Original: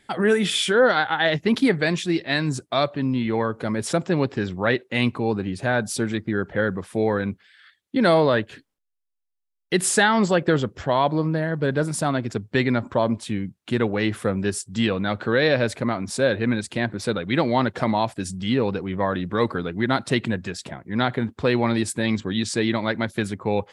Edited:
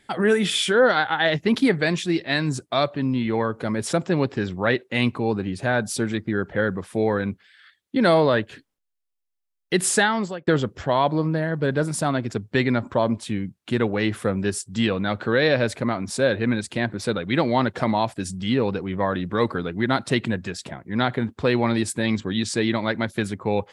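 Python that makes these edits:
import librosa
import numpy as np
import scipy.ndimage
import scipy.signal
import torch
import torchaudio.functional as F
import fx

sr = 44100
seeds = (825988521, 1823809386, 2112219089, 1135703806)

y = fx.edit(x, sr, fx.fade_out_span(start_s=9.95, length_s=0.52), tone=tone)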